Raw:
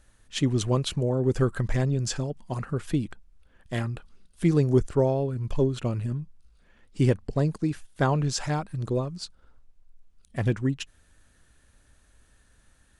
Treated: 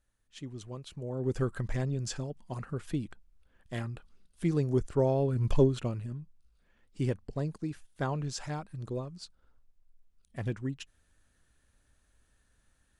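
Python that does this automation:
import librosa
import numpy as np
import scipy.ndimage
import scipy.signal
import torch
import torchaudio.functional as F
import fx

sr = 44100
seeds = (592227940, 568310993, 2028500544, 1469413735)

y = fx.gain(x, sr, db=fx.line((0.86, -18.0), (1.26, -7.0), (4.83, -7.0), (5.5, 3.0), (6.05, -9.0)))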